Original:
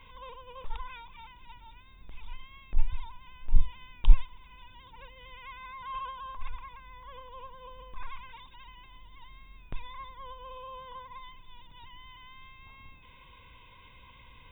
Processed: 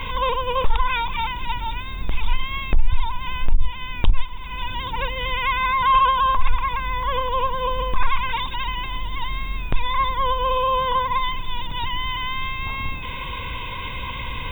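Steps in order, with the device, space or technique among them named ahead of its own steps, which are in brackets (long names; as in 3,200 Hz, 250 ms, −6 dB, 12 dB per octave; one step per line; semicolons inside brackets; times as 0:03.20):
loud club master (downward compressor 1.5 to 1, threshold −42 dBFS, peak gain reduction 12 dB; hard clipping −19.5 dBFS, distortion −21 dB; boost into a limiter +30.5 dB)
level −6 dB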